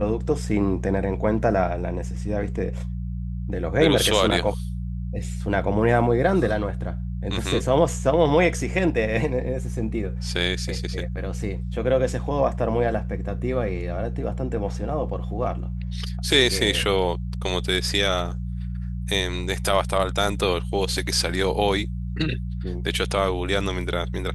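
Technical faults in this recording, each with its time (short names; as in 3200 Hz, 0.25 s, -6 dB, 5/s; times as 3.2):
hum 60 Hz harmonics 3 -29 dBFS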